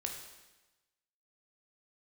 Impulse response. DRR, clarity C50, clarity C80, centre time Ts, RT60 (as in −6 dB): 1.5 dB, 5.0 dB, 7.0 dB, 36 ms, 1.1 s